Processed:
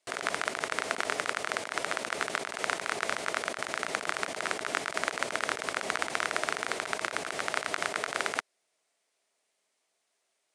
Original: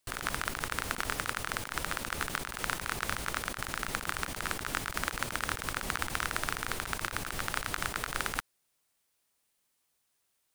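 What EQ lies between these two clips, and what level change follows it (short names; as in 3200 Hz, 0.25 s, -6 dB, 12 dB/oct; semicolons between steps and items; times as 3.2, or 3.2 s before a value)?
speaker cabinet 250–9000 Hz, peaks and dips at 420 Hz +6 dB, 650 Hz +10 dB, 2100 Hz +4 dB; +1.5 dB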